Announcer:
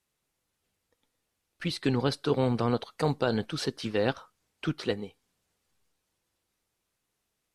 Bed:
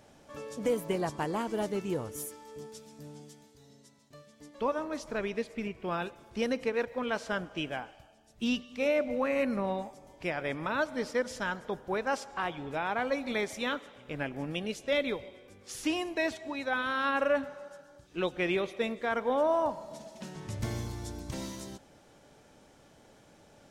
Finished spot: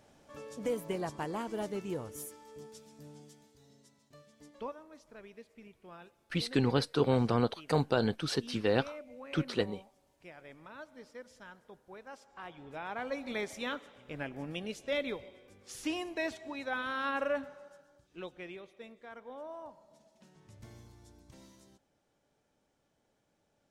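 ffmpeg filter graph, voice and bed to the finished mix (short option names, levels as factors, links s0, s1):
-filter_complex "[0:a]adelay=4700,volume=0.841[s0];[1:a]volume=2.82,afade=t=out:st=4.5:d=0.27:silence=0.211349,afade=t=in:st=12.19:d=1.21:silence=0.211349,afade=t=out:st=17.15:d=1.44:silence=0.211349[s1];[s0][s1]amix=inputs=2:normalize=0"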